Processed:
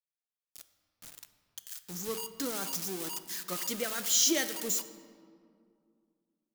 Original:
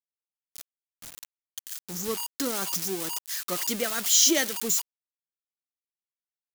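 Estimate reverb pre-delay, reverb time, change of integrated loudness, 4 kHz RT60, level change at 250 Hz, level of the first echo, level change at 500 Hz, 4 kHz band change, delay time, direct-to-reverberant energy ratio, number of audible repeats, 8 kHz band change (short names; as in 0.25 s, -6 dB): 6 ms, 2.3 s, -5.5 dB, 1.2 s, -5.0 dB, none, -5.0 dB, -5.5 dB, none, 9.5 dB, none, -6.0 dB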